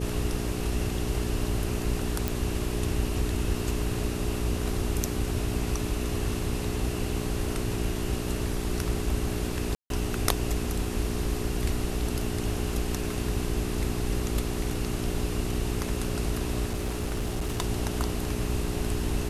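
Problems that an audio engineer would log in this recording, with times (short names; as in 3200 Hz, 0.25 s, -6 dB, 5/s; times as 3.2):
hum 60 Hz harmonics 7 -33 dBFS
2.28 pop
9.75–9.9 gap 0.152 s
16.66–17.61 clipped -25 dBFS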